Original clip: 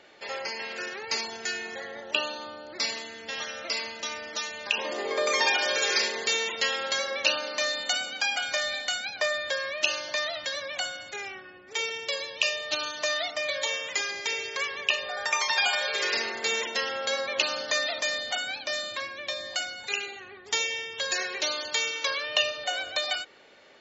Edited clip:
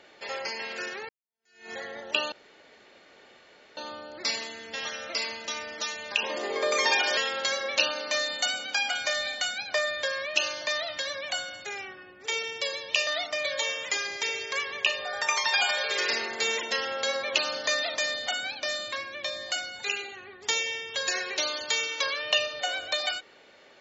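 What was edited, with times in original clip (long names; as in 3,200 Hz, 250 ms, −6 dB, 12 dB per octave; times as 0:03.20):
0:01.09–0:01.71: fade in exponential
0:02.32: splice in room tone 1.45 s
0:05.72–0:06.64: remove
0:12.54–0:13.11: remove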